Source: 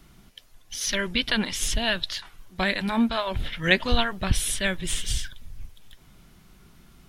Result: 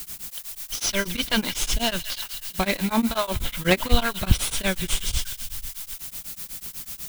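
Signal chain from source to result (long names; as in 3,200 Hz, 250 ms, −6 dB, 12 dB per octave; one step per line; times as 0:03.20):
variable-slope delta modulation 64 kbit/s
notch filter 1,800 Hz, Q 6.8
background noise blue −39 dBFS
on a send: delay with a high-pass on its return 167 ms, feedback 65%, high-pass 1,900 Hz, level −11 dB
on the sum: tremolo along a rectified sine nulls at 8.1 Hz
level +5 dB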